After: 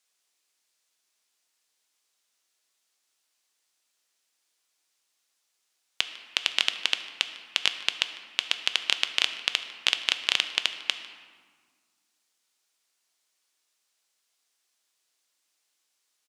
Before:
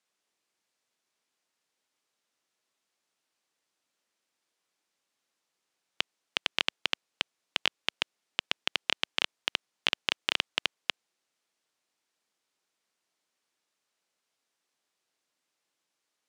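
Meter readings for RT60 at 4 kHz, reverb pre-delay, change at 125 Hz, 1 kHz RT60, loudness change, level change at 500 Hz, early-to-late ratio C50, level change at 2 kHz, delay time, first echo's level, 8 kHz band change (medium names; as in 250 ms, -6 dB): 1.0 s, 3 ms, no reading, 1.7 s, +4.5 dB, -2.0 dB, 10.0 dB, +3.5 dB, 150 ms, -20.5 dB, +8.5 dB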